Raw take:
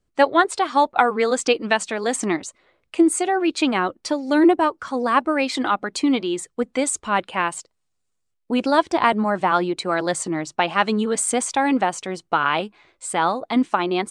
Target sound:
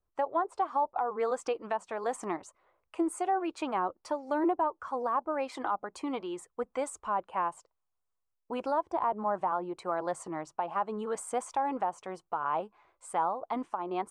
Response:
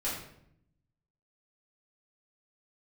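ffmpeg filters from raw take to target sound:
-filter_complex "[0:a]equalizer=frequency=125:width_type=o:width=1:gain=-5,equalizer=frequency=250:width_type=o:width=1:gain=-9,equalizer=frequency=1000:width_type=o:width=1:gain=8,equalizer=frequency=2000:width_type=o:width=1:gain=-5,equalizer=frequency=4000:width_type=o:width=1:gain=-11,equalizer=frequency=8000:width_type=o:width=1:gain=-7,acrossover=split=1000[link_01][link_02];[link_02]acompressor=threshold=-30dB:ratio=6[link_03];[link_01][link_03]amix=inputs=2:normalize=0,alimiter=limit=-11.5dB:level=0:latency=1:release=171,volume=-8.5dB"

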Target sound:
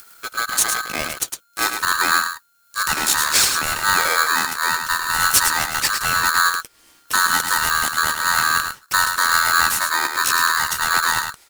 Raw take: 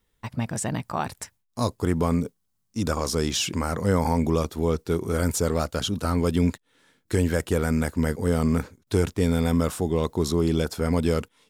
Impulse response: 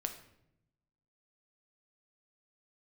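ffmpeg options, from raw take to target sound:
-filter_complex "[0:a]lowshelf=frequency=200:gain=5.5,acompressor=mode=upward:threshold=-39dB:ratio=2.5,crystalizer=i=4:c=0,asplit=2[link_01][link_02];[link_02]aecho=0:1:107:0.473[link_03];[link_01][link_03]amix=inputs=2:normalize=0,aeval=exprs='val(0)*sgn(sin(2*PI*1400*n/s))':channel_layout=same"

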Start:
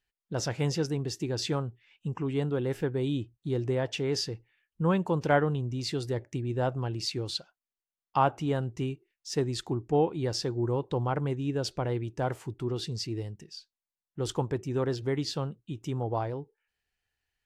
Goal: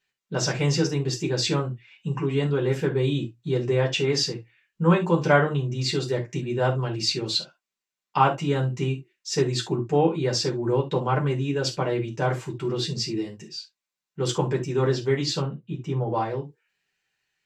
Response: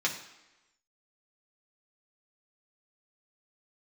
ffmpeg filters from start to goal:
-filter_complex "[0:a]asettb=1/sr,asplit=3[link_01][link_02][link_03];[link_01]atrim=end=15.404[link_04];[link_02]atrim=start=15.4:end=16.07,asetpts=PTS-STARTPTS,afade=type=in:duration=0.004:curve=qsin,afade=type=out:start_time=0.666:duration=0.004:curve=qsin,lowpass=frequency=1500:poles=1[link_05];[link_03]atrim=start=16.066[link_06];[link_04][link_05]acrossfade=duration=0.004:curve1=hsin:curve2=qsin[link_07];[link_07][link_06]acrossfade=duration=0.004:curve1=qsin:curve2=hsin[link_08];[1:a]atrim=start_sample=2205,atrim=end_sample=3969,asetrate=48510,aresample=44100[link_09];[link_08][link_09]afir=irnorm=-1:irlink=0,volume=1.5dB"

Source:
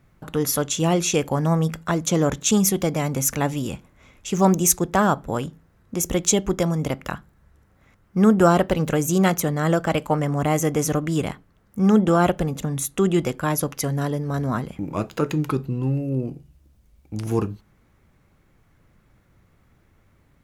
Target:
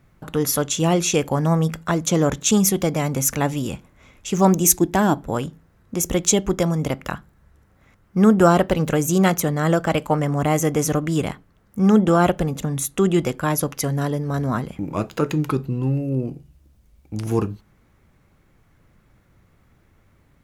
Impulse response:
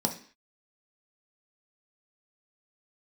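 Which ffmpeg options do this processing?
-filter_complex "[0:a]asettb=1/sr,asplit=3[link_01][link_02][link_03];[link_01]atrim=end=4.654[link_04];[link_02]atrim=start=4.65:end=5.23,asetpts=PTS-STARTPTS,afade=type=in:duration=0.004:curve=qsin,afade=type=out:start_time=0.576:duration=0.004:curve=qsin,equalizer=frequency=315:width_type=o:width=0.33:gain=11,equalizer=frequency=500:width_type=o:width=0.33:gain=-10,equalizer=frequency=1250:width_type=o:width=0.33:gain=-10,equalizer=frequency=12500:width_type=o:width=0.33:gain=4[link_05];[link_03]atrim=start=5.226[link_06];[link_04][link_05]acrossfade=duration=0.004:curve1=hsin:curve2=qsin[link_07];[link_07][link_06]acrossfade=duration=0.004:curve1=qsin:curve2=hsin,volume=1.5dB"

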